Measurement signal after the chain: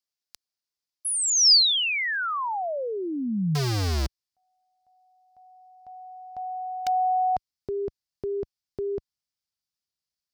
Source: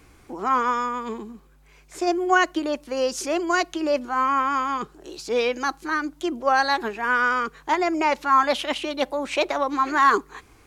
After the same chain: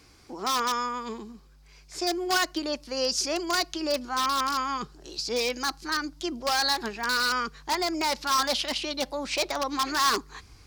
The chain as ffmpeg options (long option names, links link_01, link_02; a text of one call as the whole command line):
ffmpeg -i in.wav -filter_complex "[0:a]asubboost=boost=3.5:cutoff=170,asplit=2[link_01][link_02];[link_02]aeval=exprs='(mod(5.96*val(0)+1,2)-1)/5.96':channel_layout=same,volume=-5dB[link_03];[link_01][link_03]amix=inputs=2:normalize=0,highpass=frequency=46:poles=1,equalizer=frequency=4900:width=1.8:gain=13.5,volume=-8dB" out.wav